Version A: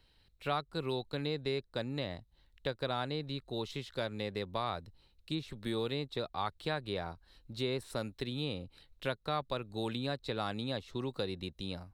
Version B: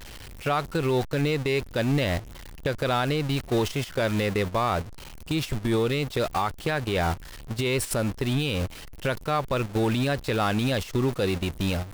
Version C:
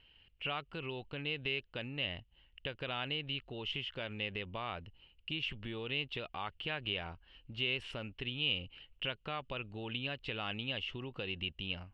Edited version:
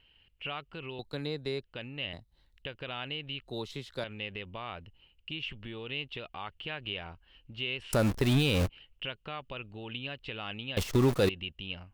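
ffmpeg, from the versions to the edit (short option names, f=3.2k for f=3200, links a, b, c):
-filter_complex "[0:a]asplit=3[a][b][c];[1:a]asplit=2[d][e];[2:a]asplit=6[f][g][h][i][j][k];[f]atrim=end=0.992[l];[a]atrim=start=0.988:end=1.632[m];[g]atrim=start=1.628:end=2.132[n];[b]atrim=start=2.128:end=2.622[o];[h]atrim=start=2.618:end=3.472[p];[c]atrim=start=3.468:end=4.042[q];[i]atrim=start=4.038:end=7.932[r];[d]atrim=start=7.928:end=8.692[s];[j]atrim=start=8.688:end=10.772[t];[e]atrim=start=10.768:end=11.292[u];[k]atrim=start=11.288[v];[l][m]acrossfade=d=0.004:c1=hsin:c2=hsin[w];[w][n]acrossfade=d=0.004:c1=hsin:c2=hsin[x];[x][o]acrossfade=d=0.004:c1=hsin:c2=hsin[y];[y][p]acrossfade=d=0.004:c1=hsin:c2=hsin[z];[z][q]acrossfade=d=0.004:c1=hsin:c2=hsin[aa];[aa][r]acrossfade=d=0.004:c1=hsin:c2=hsin[ab];[ab][s]acrossfade=d=0.004:c1=hsin:c2=hsin[ac];[ac][t]acrossfade=d=0.004:c1=hsin:c2=hsin[ad];[ad][u]acrossfade=d=0.004:c1=hsin:c2=hsin[ae];[ae][v]acrossfade=d=0.004:c1=hsin:c2=hsin"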